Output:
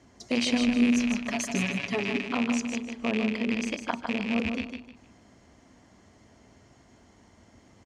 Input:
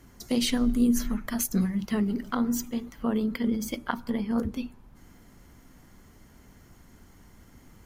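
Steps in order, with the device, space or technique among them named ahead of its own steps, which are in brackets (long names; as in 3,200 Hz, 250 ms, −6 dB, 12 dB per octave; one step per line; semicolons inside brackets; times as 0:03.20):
car door speaker with a rattle (loose part that buzzes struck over −33 dBFS, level −18 dBFS; loudspeaker in its box 90–7,400 Hz, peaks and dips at 160 Hz −8 dB, 650 Hz +7 dB, 1,400 Hz −5 dB)
0:01.20–0:02.26: comb filter 7.1 ms, depth 70%
repeating echo 153 ms, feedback 28%, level −6 dB
level −1 dB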